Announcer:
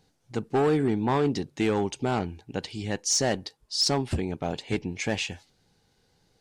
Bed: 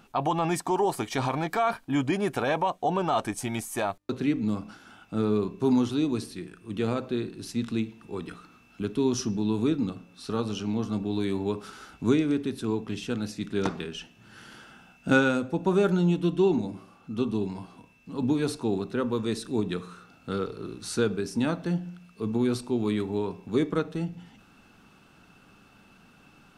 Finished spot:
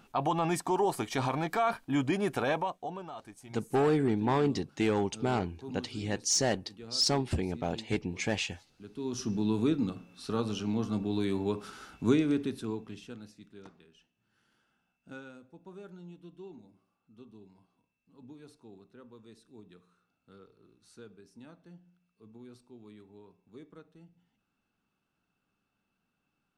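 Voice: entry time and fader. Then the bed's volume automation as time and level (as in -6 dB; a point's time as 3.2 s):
3.20 s, -3.0 dB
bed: 2.51 s -3 dB
3.16 s -19 dB
8.81 s -19 dB
9.33 s -2.5 dB
12.43 s -2.5 dB
13.71 s -25 dB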